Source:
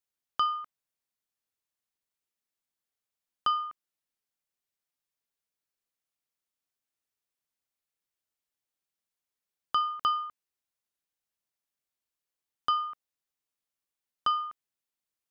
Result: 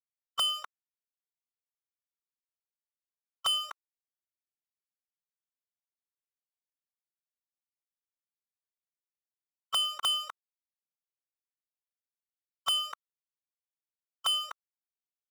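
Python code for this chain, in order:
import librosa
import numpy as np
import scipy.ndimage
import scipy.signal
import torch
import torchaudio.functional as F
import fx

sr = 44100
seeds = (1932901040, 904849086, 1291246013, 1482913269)

y = scipy.signal.sosfilt(scipy.signal.butter(2, 840.0, 'highpass', fs=sr, output='sos'), x)
y = fx.spec_gate(y, sr, threshold_db=-10, keep='weak')
y = fx.leveller(y, sr, passes=5)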